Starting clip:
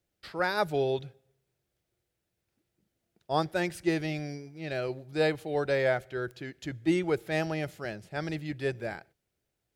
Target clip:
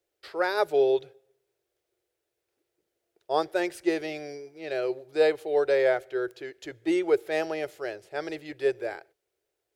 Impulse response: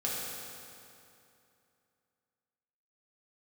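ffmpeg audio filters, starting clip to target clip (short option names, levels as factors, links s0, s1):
-af "lowshelf=f=290:t=q:w=3:g=-11"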